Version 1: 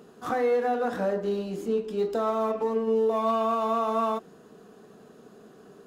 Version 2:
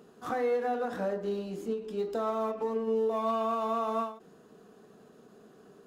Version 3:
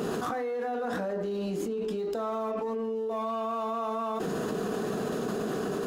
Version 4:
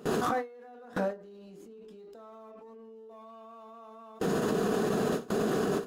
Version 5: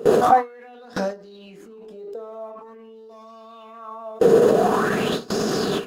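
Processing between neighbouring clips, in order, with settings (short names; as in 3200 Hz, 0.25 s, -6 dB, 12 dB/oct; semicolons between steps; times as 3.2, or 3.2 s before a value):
ending taper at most 130 dB/s; gain -4.5 dB
fast leveller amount 100%; gain -5.5 dB
gate with hold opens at -22 dBFS; gain +3 dB
LFO bell 0.46 Hz 470–5500 Hz +15 dB; gain +5.5 dB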